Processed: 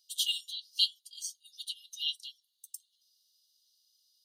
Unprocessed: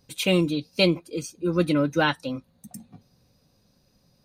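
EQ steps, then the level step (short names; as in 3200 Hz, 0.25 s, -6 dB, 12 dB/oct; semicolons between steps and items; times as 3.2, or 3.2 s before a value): brick-wall FIR high-pass 2800 Hz; 0.0 dB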